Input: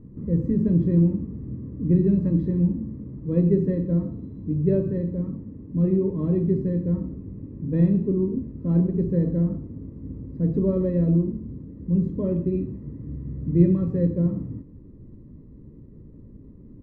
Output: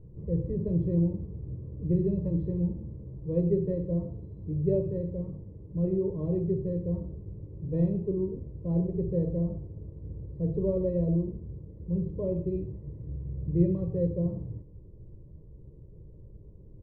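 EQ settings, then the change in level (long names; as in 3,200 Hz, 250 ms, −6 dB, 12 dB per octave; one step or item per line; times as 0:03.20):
low-pass filter 1,200 Hz 6 dB per octave
phaser with its sweep stopped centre 600 Hz, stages 4
0.0 dB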